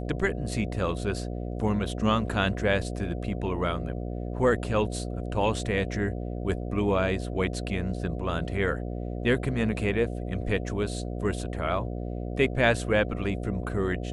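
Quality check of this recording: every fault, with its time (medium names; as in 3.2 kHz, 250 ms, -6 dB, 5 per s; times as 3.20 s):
buzz 60 Hz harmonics 12 -33 dBFS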